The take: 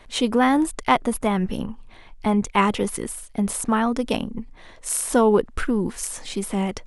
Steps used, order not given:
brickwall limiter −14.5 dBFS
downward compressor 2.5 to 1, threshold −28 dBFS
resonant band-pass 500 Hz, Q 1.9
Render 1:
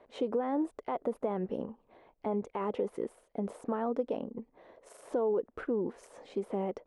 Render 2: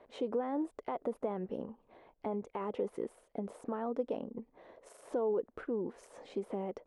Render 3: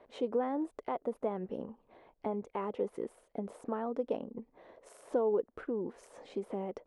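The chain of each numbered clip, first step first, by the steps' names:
brickwall limiter, then resonant band-pass, then downward compressor
brickwall limiter, then downward compressor, then resonant band-pass
downward compressor, then brickwall limiter, then resonant band-pass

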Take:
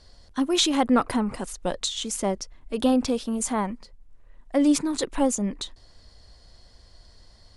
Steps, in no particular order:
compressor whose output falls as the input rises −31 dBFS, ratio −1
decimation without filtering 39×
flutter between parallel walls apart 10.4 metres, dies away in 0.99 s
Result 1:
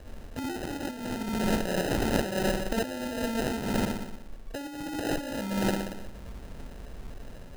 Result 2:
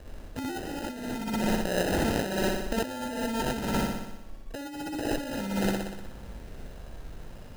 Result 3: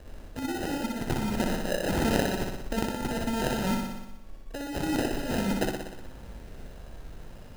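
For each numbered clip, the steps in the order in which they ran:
flutter between parallel walls, then compressor whose output falls as the input rises, then decimation without filtering
decimation without filtering, then flutter between parallel walls, then compressor whose output falls as the input rises
compressor whose output falls as the input rises, then decimation without filtering, then flutter between parallel walls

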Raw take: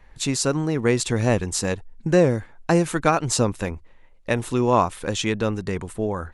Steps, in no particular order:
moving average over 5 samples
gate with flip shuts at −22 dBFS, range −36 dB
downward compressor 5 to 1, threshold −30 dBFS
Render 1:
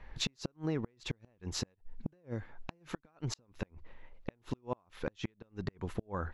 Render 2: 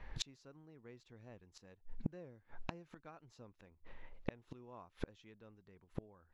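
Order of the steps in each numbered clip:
moving average, then downward compressor, then gate with flip
moving average, then gate with flip, then downward compressor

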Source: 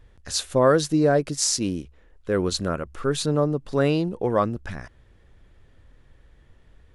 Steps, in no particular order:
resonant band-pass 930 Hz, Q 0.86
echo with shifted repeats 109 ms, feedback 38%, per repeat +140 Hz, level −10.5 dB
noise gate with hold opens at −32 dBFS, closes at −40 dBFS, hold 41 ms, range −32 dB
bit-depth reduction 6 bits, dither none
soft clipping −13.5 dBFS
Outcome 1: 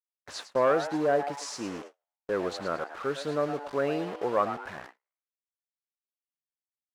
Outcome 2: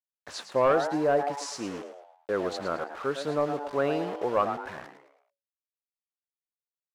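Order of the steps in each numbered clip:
soft clipping, then bit-depth reduction, then resonant band-pass, then echo with shifted repeats, then noise gate with hold
noise gate with hold, then bit-depth reduction, then echo with shifted repeats, then resonant band-pass, then soft clipping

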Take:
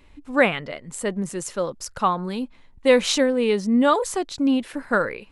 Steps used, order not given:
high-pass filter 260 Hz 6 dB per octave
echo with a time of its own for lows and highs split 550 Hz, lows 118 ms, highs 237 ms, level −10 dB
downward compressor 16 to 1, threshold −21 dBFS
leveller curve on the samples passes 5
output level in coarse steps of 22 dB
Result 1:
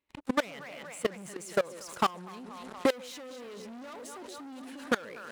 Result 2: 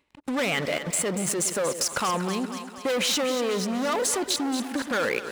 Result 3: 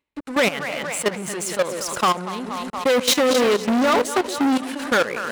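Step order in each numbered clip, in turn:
echo with a time of its own for lows and highs, then leveller curve on the samples, then high-pass filter, then downward compressor, then output level in coarse steps
leveller curve on the samples, then output level in coarse steps, then echo with a time of its own for lows and highs, then downward compressor, then high-pass filter
echo with a time of its own for lows and highs, then output level in coarse steps, then downward compressor, then leveller curve on the samples, then high-pass filter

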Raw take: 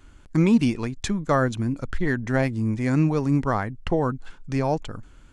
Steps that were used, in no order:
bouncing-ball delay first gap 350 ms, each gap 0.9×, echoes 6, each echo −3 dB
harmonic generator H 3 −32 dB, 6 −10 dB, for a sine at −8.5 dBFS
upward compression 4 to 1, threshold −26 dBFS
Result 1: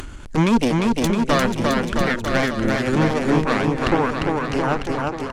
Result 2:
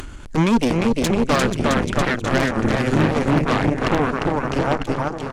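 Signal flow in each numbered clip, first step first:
harmonic generator, then bouncing-ball delay, then upward compression
bouncing-ball delay, then harmonic generator, then upward compression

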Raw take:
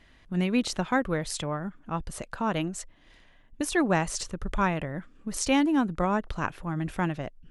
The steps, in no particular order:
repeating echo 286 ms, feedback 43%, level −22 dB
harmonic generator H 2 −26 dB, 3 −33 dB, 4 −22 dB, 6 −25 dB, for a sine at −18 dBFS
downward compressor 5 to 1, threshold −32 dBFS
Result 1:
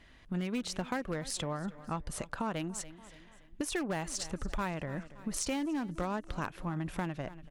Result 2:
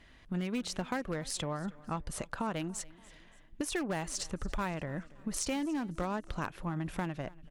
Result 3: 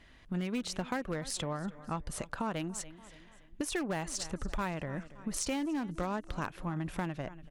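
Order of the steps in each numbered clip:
harmonic generator, then repeating echo, then downward compressor
harmonic generator, then downward compressor, then repeating echo
repeating echo, then harmonic generator, then downward compressor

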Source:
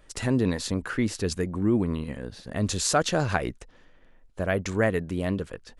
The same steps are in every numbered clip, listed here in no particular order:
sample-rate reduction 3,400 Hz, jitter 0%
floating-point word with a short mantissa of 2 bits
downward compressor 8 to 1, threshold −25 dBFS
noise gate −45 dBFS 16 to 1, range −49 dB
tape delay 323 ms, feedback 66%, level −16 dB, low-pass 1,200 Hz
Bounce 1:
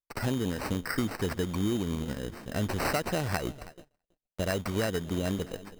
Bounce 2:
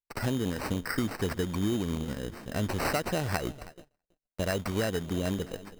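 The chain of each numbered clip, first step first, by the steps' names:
floating-point word with a short mantissa, then downward compressor, then tape delay, then sample-rate reduction, then noise gate
downward compressor, then floating-point word with a short mantissa, then tape delay, then noise gate, then sample-rate reduction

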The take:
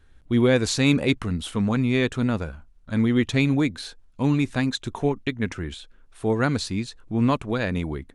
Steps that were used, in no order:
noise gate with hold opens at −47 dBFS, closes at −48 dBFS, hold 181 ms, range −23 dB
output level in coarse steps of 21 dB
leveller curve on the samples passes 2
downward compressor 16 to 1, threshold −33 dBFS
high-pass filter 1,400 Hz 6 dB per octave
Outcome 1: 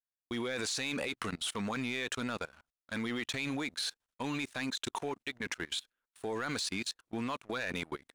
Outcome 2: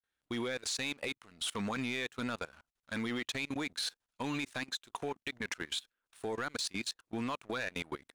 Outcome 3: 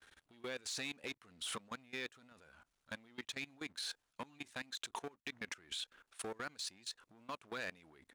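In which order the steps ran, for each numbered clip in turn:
high-pass filter, then noise gate with hold, then output level in coarse steps, then downward compressor, then leveller curve on the samples
noise gate with hold, then high-pass filter, then downward compressor, then output level in coarse steps, then leveller curve on the samples
downward compressor, then leveller curve on the samples, then noise gate with hold, then high-pass filter, then output level in coarse steps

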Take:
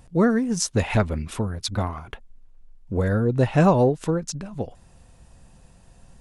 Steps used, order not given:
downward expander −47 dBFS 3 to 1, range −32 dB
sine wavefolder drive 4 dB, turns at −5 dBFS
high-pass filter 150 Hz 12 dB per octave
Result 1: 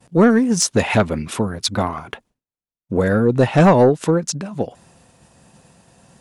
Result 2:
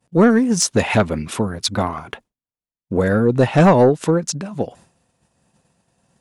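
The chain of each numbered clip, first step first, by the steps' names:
high-pass filter, then sine wavefolder, then downward expander
high-pass filter, then downward expander, then sine wavefolder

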